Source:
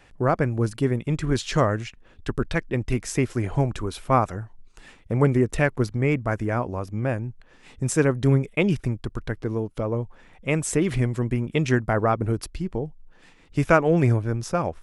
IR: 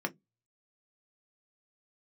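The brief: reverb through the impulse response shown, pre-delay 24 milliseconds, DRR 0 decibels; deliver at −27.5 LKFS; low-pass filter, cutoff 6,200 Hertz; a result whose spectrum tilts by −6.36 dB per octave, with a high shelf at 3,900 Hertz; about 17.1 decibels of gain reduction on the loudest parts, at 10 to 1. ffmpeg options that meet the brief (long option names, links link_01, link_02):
-filter_complex "[0:a]lowpass=6200,highshelf=frequency=3900:gain=4.5,acompressor=threshold=-31dB:ratio=10,asplit=2[link_01][link_02];[1:a]atrim=start_sample=2205,adelay=24[link_03];[link_02][link_03]afir=irnorm=-1:irlink=0,volume=-4.5dB[link_04];[link_01][link_04]amix=inputs=2:normalize=0,volume=6dB"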